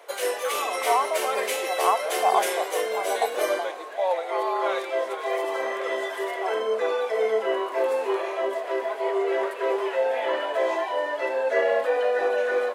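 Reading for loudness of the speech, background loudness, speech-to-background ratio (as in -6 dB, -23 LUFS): -28.0 LUFS, -26.0 LUFS, -2.0 dB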